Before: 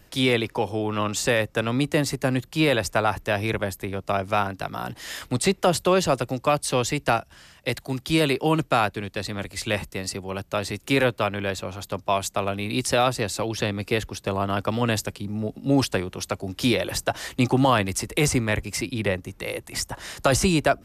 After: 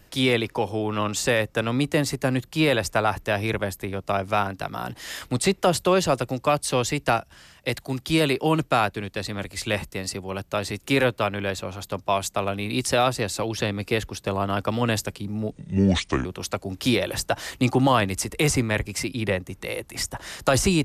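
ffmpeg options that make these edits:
ffmpeg -i in.wav -filter_complex "[0:a]asplit=3[link_01][link_02][link_03];[link_01]atrim=end=15.514[link_04];[link_02]atrim=start=15.51:end=16.03,asetpts=PTS-STARTPTS,asetrate=30870,aresample=44100,atrim=end_sample=32760,asetpts=PTS-STARTPTS[link_05];[link_03]atrim=start=16.026[link_06];[link_04][link_05]acrossfade=duration=0.004:curve1=hsin:curve2=hsin[link_07];[link_07][link_06]acrossfade=duration=0.004:curve1=hsin:curve2=hsin" out.wav

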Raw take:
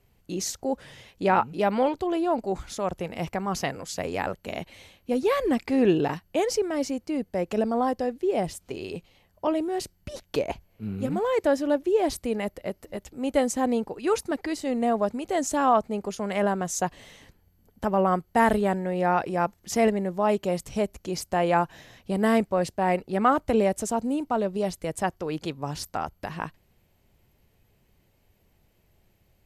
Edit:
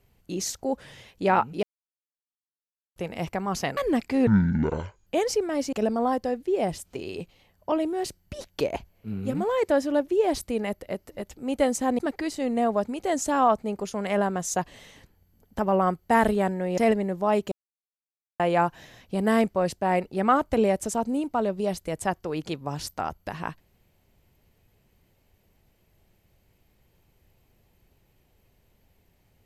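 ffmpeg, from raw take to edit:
ffmpeg -i in.wav -filter_complex "[0:a]asplit=11[link_01][link_02][link_03][link_04][link_05][link_06][link_07][link_08][link_09][link_10][link_11];[link_01]atrim=end=1.63,asetpts=PTS-STARTPTS,afade=type=out:start_time=1.626:duration=0.004:curve=hsin[link_12];[link_02]atrim=start=1.63:end=2.96,asetpts=PTS-STARTPTS,volume=0[link_13];[link_03]atrim=start=2.96:end=3.772,asetpts=PTS-STARTPTS,afade=type=in:duration=0.004:curve=hsin[link_14];[link_04]atrim=start=5.348:end=5.854[link_15];[link_05]atrim=start=5.85:end=6.28,asetpts=PTS-STARTPTS,asetrate=23814,aresample=44100[link_16];[link_06]atrim=start=6.276:end=6.942[link_17];[link_07]atrim=start=7.478:end=13.742[link_18];[link_08]atrim=start=14.238:end=19.032[link_19];[link_09]atrim=start=19.738:end=20.48,asetpts=PTS-STARTPTS,afade=type=out:start_time=0.738:duration=0.004:curve=hsin[link_20];[link_10]atrim=start=20.48:end=21.36,asetpts=PTS-STARTPTS,volume=0[link_21];[link_11]atrim=start=21.36,asetpts=PTS-STARTPTS,afade=type=in:duration=0.004:curve=hsin[link_22];[link_12][link_13][link_14]concat=n=3:v=0:a=1[link_23];[link_23][link_15]acrossfade=duration=0.004:curve1=hsin:curve2=hsin[link_24];[link_24][link_16]acrossfade=duration=0.004:curve1=hsin:curve2=hsin[link_25];[link_25][link_17]acrossfade=duration=0.004:curve1=hsin:curve2=hsin[link_26];[link_26][link_18]acrossfade=duration=0.004:curve1=hsin:curve2=hsin[link_27];[link_27][link_19]acrossfade=duration=0.004:curve1=hsin:curve2=hsin[link_28];[link_20][link_21][link_22]concat=n=3:v=0:a=1[link_29];[link_28][link_29]acrossfade=duration=0.004:curve1=hsin:curve2=hsin" out.wav

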